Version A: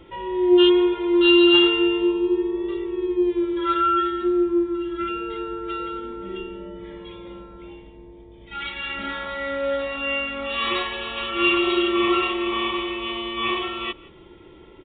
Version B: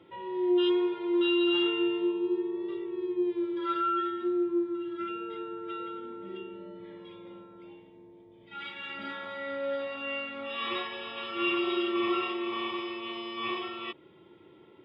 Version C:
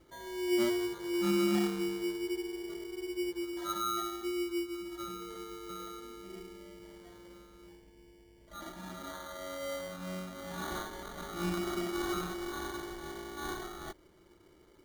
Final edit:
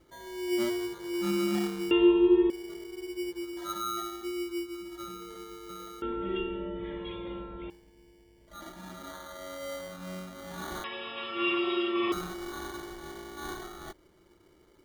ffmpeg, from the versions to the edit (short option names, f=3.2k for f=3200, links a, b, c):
-filter_complex "[0:a]asplit=2[a][b];[2:a]asplit=4[c][d][e][f];[c]atrim=end=1.912[g];[a]atrim=start=1.908:end=2.502[h];[d]atrim=start=2.498:end=6.022[i];[b]atrim=start=6.018:end=7.702[j];[e]atrim=start=7.698:end=10.842[k];[1:a]atrim=start=10.838:end=12.122[l];[f]atrim=start=12.118[m];[g][h]acrossfade=d=0.004:c1=hsin:c2=hsin[n];[n][i]acrossfade=d=0.004:c1=hsin:c2=hsin[o];[o][j]acrossfade=d=0.004:c1=hsin:c2=hsin[p];[p][k]acrossfade=d=0.004:c1=hsin:c2=hsin[q];[q][l]acrossfade=d=0.004:c1=hsin:c2=hsin[r];[r][m]acrossfade=d=0.004:c1=hsin:c2=hsin"